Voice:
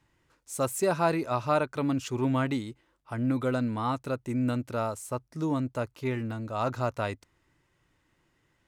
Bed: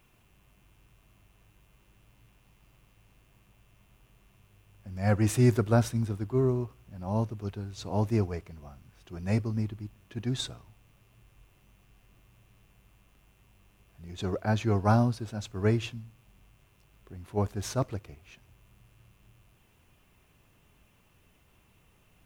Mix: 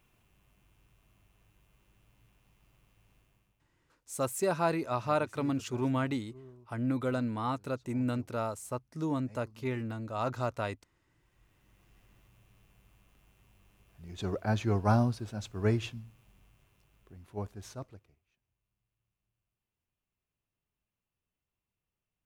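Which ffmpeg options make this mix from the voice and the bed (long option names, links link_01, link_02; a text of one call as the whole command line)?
ffmpeg -i stem1.wav -i stem2.wav -filter_complex "[0:a]adelay=3600,volume=-3.5dB[link_01];[1:a]volume=18.5dB,afade=type=out:start_time=3.17:duration=0.51:silence=0.0891251,afade=type=in:start_time=11.06:duration=0.89:silence=0.0668344,afade=type=out:start_time=16.23:duration=2.03:silence=0.0595662[link_02];[link_01][link_02]amix=inputs=2:normalize=0" out.wav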